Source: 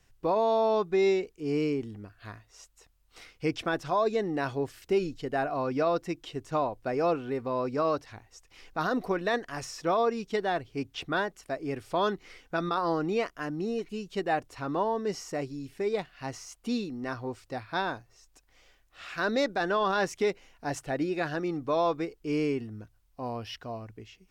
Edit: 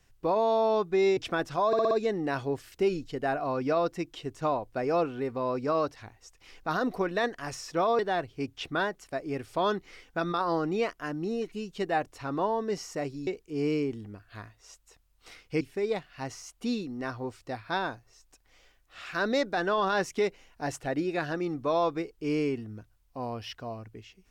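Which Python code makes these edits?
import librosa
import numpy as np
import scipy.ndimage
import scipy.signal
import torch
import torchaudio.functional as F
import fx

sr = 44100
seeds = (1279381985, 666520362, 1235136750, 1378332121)

y = fx.edit(x, sr, fx.move(start_s=1.17, length_s=2.34, to_s=15.64),
    fx.stutter(start_s=4.01, slice_s=0.06, count=5),
    fx.cut(start_s=10.09, length_s=0.27), tone=tone)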